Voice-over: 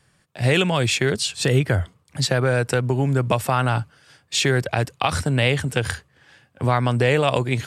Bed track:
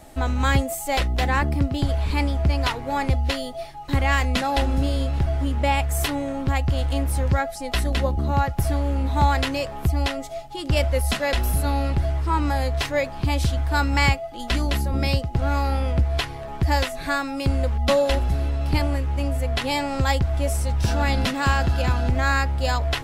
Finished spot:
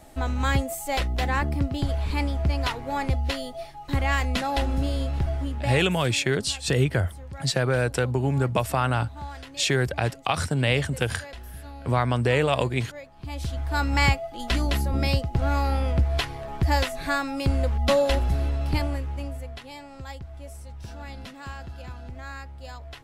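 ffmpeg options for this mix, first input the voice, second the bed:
ffmpeg -i stem1.wav -i stem2.wav -filter_complex "[0:a]adelay=5250,volume=-3.5dB[link_01];[1:a]volume=13.5dB,afade=type=out:start_time=5.28:duration=0.7:silence=0.177828,afade=type=in:start_time=13.16:duration=0.86:silence=0.141254,afade=type=out:start_time=18.48:duration=1.15:silence=0.158489[link_02];[link_01][link_02]amix=inputs=2:normalize=0" out.wav

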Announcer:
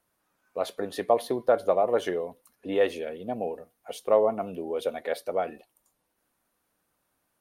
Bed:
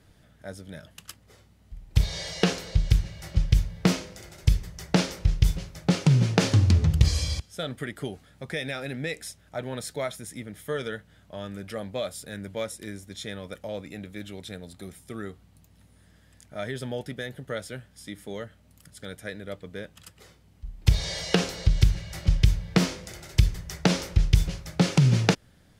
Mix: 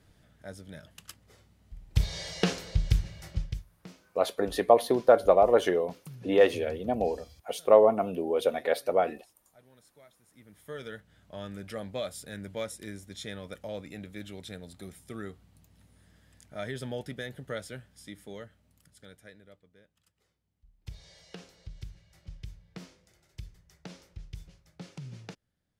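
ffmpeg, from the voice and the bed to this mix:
ffmpeg -i stem1.wav -i stem2.wav -filter_complex "[0:a]adelay=3600,volume=3dB[link_01];[1:a]volume=19dB,afade=type=out:start_time=3.18:duration=0.46:silence=0.0749894,afade=type=in:start_time=10.27:duration=1.11:silence=0.0707946,afade=type=out:start_time=17.54:duration=2.15:silence=0.1[link_02];[link_01][link_02]amix=inputs=2:normalize=0" out.wav

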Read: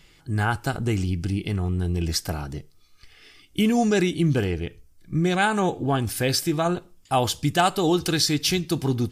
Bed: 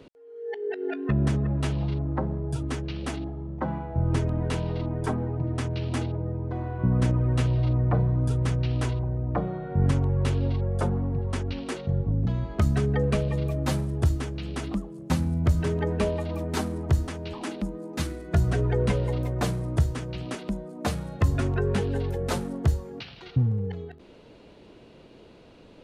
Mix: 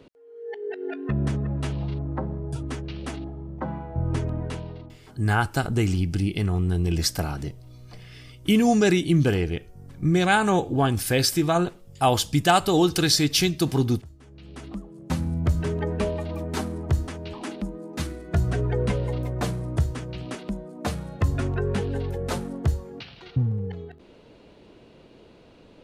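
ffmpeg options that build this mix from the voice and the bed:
ffmpeg -i stem1.wav -i stem2.wav -filter_complex "[0:a]adelay=4900,volume=1.5dB[link_01];[1:a]volume=21dB,afade=type=out:start_time=4.32:duration=0.66:silence=0.0841395,afade=type=in:start_time=14.18:duration=1.12:silence=0.0749894[link_02];[link_01][link_02]amix=inputs=2:normalize=0" out.wav

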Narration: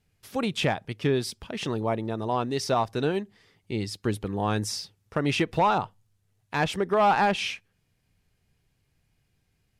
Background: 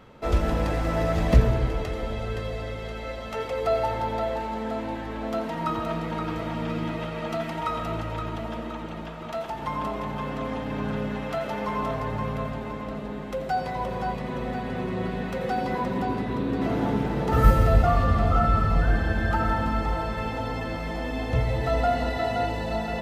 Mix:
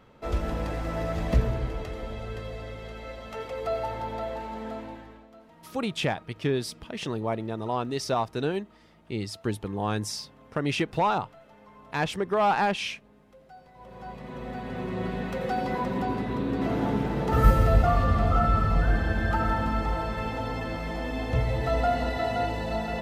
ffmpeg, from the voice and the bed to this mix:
ffmpeg -i stem1.wav -i stem2.wav -filter_complex "[0:a]adelay=5400,volume=-2dB[link_01];[1:a]volume=16.5dB,afade=type=out:start_time=4.69:duration=0.58:silence=0.125893,afade=type=in:start_time=13.74:duration=1.36:silence=0.0794328[link_02];[link_01][link_02]amix=inputs=2:normalize=0" out.wav

